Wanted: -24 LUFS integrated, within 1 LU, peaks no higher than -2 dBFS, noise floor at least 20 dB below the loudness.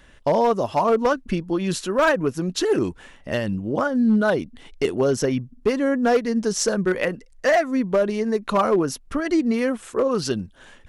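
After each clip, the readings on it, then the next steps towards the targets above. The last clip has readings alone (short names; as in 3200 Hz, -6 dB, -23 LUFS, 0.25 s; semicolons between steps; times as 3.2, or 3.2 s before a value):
clipped 0.8%; flat tops at -12.5 dBFS; loudness -22.0 LUFS; peak -12.5 dBFS; loudness target -24.0 LUFS
-> clip repair -12.5 dBFS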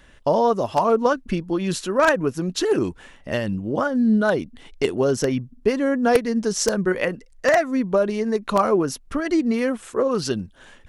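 clipped 0.0%; loudness -22.0 LUFS; peak -3.5 dBFS; loudness target -24.0 LUFS
-> gain -2 dB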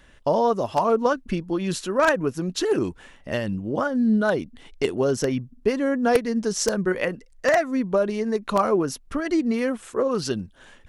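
loudness -24.0 LUFS; peak -5.5 dBFS; noise floor -52 dBFS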